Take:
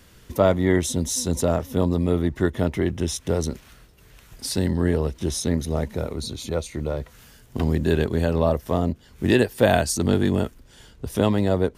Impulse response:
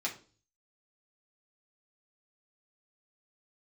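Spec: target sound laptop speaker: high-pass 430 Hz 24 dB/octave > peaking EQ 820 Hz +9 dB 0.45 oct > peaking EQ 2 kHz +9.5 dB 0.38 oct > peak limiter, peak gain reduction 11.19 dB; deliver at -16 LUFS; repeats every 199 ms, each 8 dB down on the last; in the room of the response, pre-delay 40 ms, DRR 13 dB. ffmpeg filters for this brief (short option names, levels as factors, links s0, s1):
-filter_complex "[0:a]aecho=1:1:199|398|597|796|995:0.398|0.159|0.0637|0.0255|0.0102,asplit=2[s0][s1];[1:a]atrim=start_sample=2205,adelay=40[s2];[s1][s2]afir=irnorm=-1:irlink=0,volume=0.141[s3];[s0][s3]amix=inputs=2:normalize=0,highpass=f=430:w=0.5412,highpass=f=430:w=1.3066,equalizer=f=820:t=o:w=0.45:g=9,equalizer=f=2000:t=o:w=0.38:g=9.5,volume=3.55,alimiter=limit=0.708:level=0:latency=1"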